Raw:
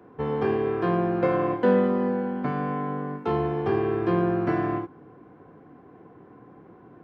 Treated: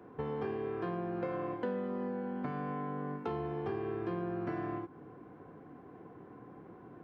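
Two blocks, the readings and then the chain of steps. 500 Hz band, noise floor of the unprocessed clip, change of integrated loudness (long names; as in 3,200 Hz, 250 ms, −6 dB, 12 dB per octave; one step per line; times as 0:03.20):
−12.5 dB, −51 dBFS, −12.5 dB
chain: downward compressor 4 to 1, threshold −33 dBFS, peak gain reduction 14.5 dB
level −2.5 dB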